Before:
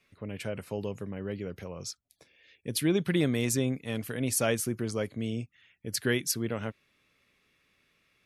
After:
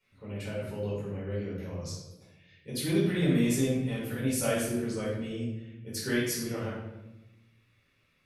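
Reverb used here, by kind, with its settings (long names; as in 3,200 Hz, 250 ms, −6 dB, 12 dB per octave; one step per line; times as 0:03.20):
rectangular room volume 380 cubic metres, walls mixed, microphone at 4.6 metres
level −12.5 dB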